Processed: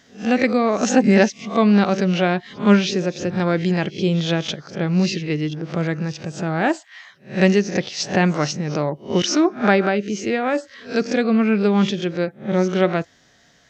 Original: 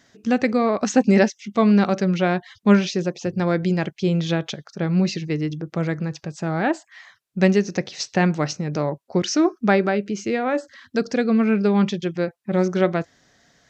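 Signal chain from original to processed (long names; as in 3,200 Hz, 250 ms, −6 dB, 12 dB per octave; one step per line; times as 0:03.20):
peak hold with a rise ahead of every peak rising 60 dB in 0.31 s
parametric band 3,000 Hz +4 dB 0.6 octaves
level +1 dB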